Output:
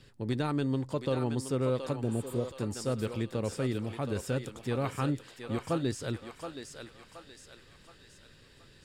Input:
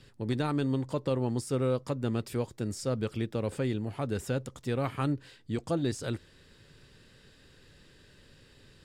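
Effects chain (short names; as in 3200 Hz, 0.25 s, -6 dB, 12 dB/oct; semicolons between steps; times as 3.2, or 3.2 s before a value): thinning echo 0.723 s, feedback 50%, high-pass 640 Hz, level -5 dB; spectral repair 2.06–2.44, 800–6900 Hz both; gain -1 dB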